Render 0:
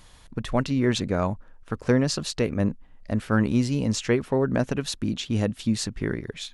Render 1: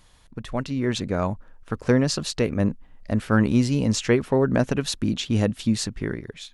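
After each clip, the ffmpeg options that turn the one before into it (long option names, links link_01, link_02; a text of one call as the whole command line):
ffmpeg -i in.wav -af "dynaudnorm=framelen=290:gausssize=7:maxgain=11.5dB,volume=-4.5dB" out.wav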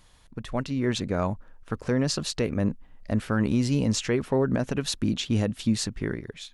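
ffmpeg -i in.wav -af "alimiter=limit=-12dB:level=0:latency=1:release=75,volume=-1.5dB" out.wav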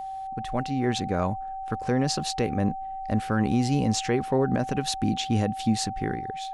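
ffmpeg -i in.wav -af "aeval=exprs='val(0)+0.0251*sin(2*PI*770*n/s)':channel_layout=same" out.wav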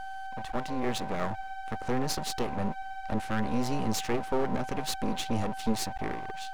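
ffmpeg -i in.wav -af "aeval=exprs='max(val(0),0)':channel_layout=same" out.wav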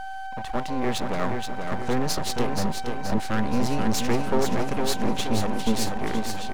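ffmpeg -i in.wav -af "aecho=1:1:477|954|1431|1908|2385|2862:0.531|0.265|0.133|0.0664|0.0332|0.0166,volume=4.5dB" out.wav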